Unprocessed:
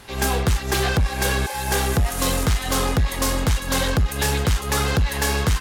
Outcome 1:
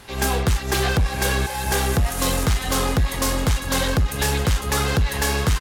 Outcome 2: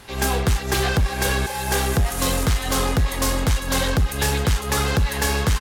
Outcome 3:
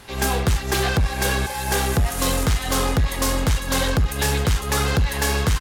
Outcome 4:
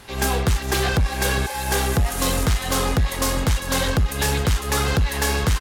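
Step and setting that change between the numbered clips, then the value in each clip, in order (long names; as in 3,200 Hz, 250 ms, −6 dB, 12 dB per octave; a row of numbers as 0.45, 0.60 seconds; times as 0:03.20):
single-tap delay, delay time: 672, 250, 71, 401 milliseconds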